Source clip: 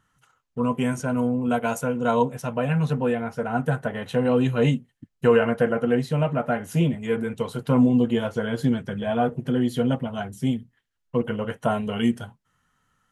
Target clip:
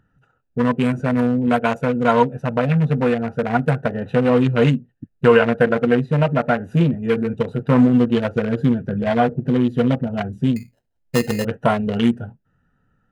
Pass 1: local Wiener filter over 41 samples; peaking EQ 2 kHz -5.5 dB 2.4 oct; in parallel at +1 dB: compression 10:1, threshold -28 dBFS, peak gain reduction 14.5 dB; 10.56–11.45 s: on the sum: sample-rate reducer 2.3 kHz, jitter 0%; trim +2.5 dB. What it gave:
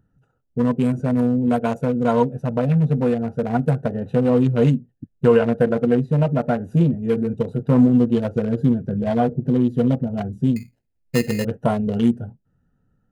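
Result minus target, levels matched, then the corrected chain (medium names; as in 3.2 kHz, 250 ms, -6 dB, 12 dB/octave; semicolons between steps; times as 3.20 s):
2 kHz band -8.0 dB
local Wiener filter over 41 samples; peaking EQ 2 kHz +6 dB 2.4 oct; in parallel at +1 dB: compression 10:1, threshold -28 dBFS, peak gain reduction 16.5 dB; 10.56–11.45 s: on the sum: sample-rate reducer 2.3 kHz, jitter 0%; trim +2.5 dB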